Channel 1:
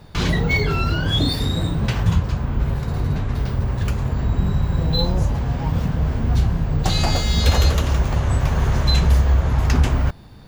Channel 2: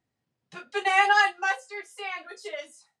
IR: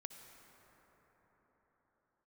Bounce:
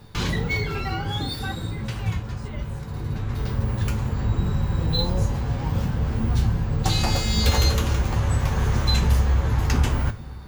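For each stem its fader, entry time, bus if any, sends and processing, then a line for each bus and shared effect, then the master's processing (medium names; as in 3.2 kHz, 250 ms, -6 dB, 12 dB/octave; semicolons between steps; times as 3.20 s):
+1.0 dB, 0.00 s, send -4 dB, feedback comb 110 Hz, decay 0.23 s, harmonics all, mix 70%; auto duck -11 dB, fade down 1.20 s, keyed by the second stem
-7.5 dB, 0.00 s, no send, low-pass that closes with the level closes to 590 Hz, closed at -17.5 dBFS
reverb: on, pre-delay 53 ms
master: treble shelf 7.6 kHz +5.5 dB; band-stop 650 Hz, Q 12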